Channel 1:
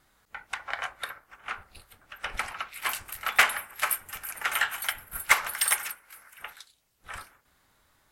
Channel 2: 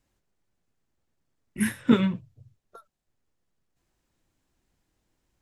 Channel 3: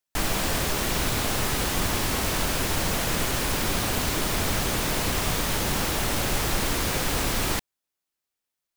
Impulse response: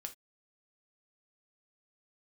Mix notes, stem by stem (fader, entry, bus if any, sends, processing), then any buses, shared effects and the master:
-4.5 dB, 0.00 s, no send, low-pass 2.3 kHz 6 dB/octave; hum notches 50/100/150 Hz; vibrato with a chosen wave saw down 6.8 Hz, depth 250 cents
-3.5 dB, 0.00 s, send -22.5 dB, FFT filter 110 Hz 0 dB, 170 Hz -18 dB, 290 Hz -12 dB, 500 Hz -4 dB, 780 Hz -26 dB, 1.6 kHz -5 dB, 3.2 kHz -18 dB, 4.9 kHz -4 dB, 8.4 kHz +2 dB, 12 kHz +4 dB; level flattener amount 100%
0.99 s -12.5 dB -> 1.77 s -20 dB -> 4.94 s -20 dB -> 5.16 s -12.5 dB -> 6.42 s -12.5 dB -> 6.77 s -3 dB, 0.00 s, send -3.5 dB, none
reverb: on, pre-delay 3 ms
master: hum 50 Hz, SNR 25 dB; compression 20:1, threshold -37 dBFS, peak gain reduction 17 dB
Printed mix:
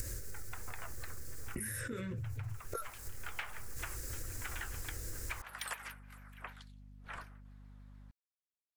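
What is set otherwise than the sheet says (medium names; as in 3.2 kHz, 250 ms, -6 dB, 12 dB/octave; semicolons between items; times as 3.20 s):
stem 2 -3.5 dB -> +3.5 dB; stem 3: muted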